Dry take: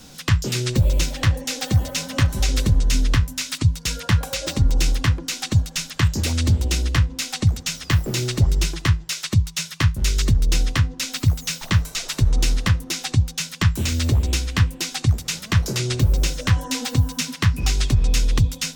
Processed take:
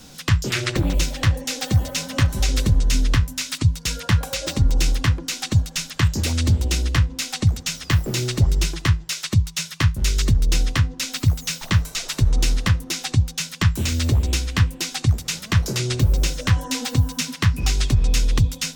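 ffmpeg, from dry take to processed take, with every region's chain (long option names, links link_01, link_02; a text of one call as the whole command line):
ffmpeg -i in.wav -filter_complex "[0:a]asettb=1/sr,asplit=3[link_01][link_02][link_03];[link_01]atrim=end=0.504[link_04];[link_02]atrim=start=0.5:end=0.95,asetpts=PTS-STARTPTS,afade=type=in:duration=0.004:curve=qsin,afade=type=out:start_time=0.446:duration=0.004:curve=qsin,equalizer=frequency=1600:width_type=o:width=2.1:gain=13.5,tremolo=f=230:d=0.919[link_05];[link_03]atrim=start=0.946[link_06];[link_04][link_05]acrossfade=duration=0.004:curve1=hsin:curve2=qsin[link_07];[link_07][link_06]acrossfade=duration=0.004:curve1=qsin:curve2=hsin" out.wav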